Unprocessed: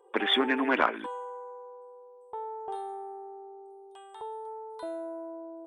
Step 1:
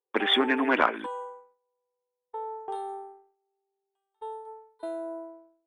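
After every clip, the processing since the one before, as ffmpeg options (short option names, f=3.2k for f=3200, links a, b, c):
-af "agate=range=-36dB:threshold=-39dB:ratio=16:detection=peak,volume=2dB"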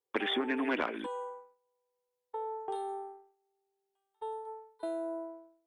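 -filter_complex "[0:a]acrossover=split=630|2000[a][b][c];[a]acompressor=threshold=-31dB:ratio=4[d];[b]acompressor=threshold=-42dB:ratio=4[e];[c]acompressor=threshold=-36dB:ratio=4[f];[d][e][f]amix=inputs=3:normalize=0"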